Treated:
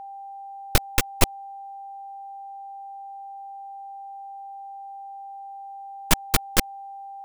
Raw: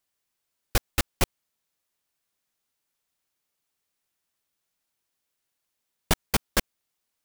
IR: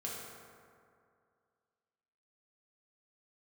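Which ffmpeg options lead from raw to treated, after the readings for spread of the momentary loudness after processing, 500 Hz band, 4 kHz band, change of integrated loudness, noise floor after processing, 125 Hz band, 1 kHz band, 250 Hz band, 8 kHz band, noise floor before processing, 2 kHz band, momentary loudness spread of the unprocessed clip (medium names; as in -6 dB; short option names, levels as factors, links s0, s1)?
16 LU, +2.5 dB, +4.0 dB, -1.5 dB, -39 dBFS, +3.0 dB, +9.0 dB, +3.0 dB, +4.5 dB, -81 dBFS, +3.5 dB, 4 LU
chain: -af "aeval=exprs='0.447*(cos(1*acos(clip(val(0)/0.447,-1,1)))-cos(1*PI/2))+0.158*(cos(6*acos(clip(val(0)/0.447,-1,1)))-cos(6*PI/2))':c=same,aeval=exprs='val(0)+0.0158*sin(2*PI*790*n/s)':c=same"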